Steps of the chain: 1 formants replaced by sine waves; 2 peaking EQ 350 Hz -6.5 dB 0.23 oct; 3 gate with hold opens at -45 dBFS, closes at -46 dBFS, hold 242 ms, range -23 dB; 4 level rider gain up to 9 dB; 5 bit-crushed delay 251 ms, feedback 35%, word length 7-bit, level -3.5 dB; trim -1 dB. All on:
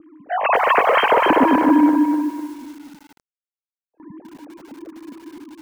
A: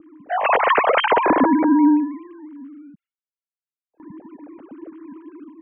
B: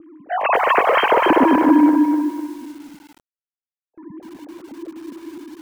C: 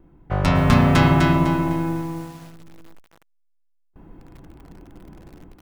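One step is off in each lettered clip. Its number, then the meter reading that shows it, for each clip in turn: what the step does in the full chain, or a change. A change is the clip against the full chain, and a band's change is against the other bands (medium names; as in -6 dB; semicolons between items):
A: 5, momentary loudness spread change -1 LU; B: 2, 250 Hz band +1.5 dB; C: 1, 250 Hz band +3.0 dB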